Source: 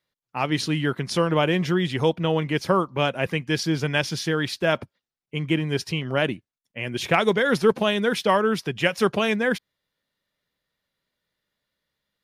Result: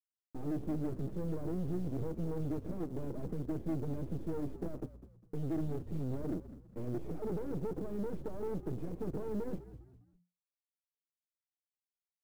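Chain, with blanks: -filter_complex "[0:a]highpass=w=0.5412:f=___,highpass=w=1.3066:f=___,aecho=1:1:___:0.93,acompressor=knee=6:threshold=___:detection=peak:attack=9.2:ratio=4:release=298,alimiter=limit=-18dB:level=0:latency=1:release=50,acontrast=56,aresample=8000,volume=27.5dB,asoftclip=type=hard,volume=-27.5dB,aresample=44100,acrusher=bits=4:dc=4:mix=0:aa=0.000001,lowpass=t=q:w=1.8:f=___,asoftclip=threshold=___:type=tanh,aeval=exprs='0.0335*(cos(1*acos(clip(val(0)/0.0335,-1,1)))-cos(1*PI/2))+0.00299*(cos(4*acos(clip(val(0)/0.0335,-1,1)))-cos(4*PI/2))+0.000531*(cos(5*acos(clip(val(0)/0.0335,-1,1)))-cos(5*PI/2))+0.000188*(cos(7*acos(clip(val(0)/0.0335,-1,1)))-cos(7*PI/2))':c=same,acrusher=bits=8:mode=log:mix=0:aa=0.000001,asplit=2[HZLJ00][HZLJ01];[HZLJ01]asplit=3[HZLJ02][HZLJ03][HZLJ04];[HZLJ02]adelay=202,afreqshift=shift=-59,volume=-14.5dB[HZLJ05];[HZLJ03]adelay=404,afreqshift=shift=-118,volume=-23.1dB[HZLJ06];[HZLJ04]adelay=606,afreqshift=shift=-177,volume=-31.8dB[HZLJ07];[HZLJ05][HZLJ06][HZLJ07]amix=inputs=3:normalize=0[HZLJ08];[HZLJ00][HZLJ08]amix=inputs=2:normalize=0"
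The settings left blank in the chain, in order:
110, 110, 6.5, -20dB, 360, -29.5dB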